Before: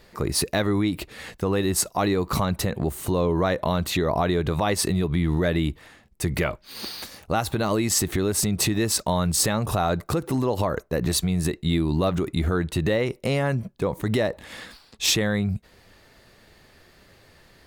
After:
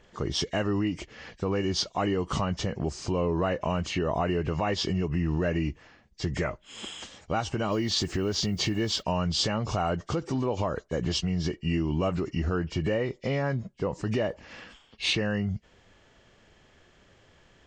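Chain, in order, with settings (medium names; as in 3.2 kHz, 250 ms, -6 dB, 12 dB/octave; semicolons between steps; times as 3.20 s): knee-point frequency compression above 1.6 kHz 1.5:1; 7.70–9.01 s: added noise violet -61 dBFS; trim -4.5 dB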